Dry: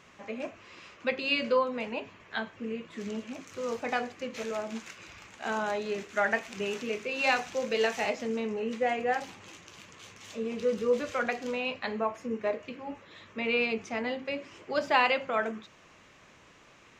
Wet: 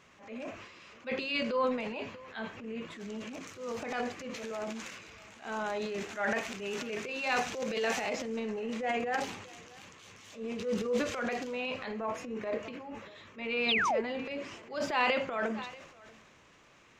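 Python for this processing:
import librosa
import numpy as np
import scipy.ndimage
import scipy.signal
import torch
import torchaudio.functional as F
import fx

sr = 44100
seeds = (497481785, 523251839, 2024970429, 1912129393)

y = x + 10.0 ** (-23.0 / 20.0) * np.pad(x, (int(635 * sr / 1000.0), 0))[:len(x)]
y = fx.transient(y, sr, attack_db=-8, sustain_db=9)
y = fx.spec_paint(y, sr, seeds[0], shape='fall', start_s=13.68, length_s=0.33, low_hz=380.0, high_hz=4200.0, level_db=-25.0)
y = y * librosa.db_to_amplitude(-3.5)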